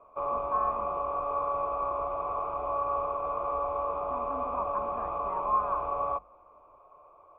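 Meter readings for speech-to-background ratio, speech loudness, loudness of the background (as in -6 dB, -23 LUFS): -2.5 dB, -34.5 LUFS, -32.0 LUFS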